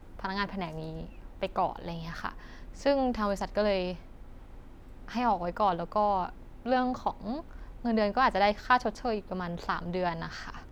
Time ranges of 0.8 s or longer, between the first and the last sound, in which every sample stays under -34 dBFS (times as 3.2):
3.95–5.08